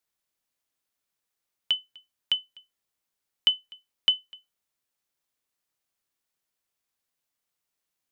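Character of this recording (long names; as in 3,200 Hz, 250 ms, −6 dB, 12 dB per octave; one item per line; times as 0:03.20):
background noise floor −84 dBFS
spectral slope +1.0 dB per octave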